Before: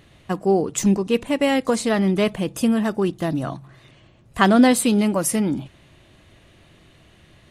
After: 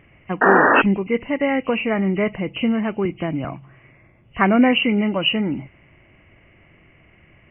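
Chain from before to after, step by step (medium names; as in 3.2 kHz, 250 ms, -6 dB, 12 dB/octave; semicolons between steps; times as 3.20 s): knee-point frequency compression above 1.9 kHz 4:1; 0.41–0.82 s: painted sound noise 230–1900 Hz -13 dBFS; 3.05–3.45 s: three bands compressed up and down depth 40%; trim -1 dB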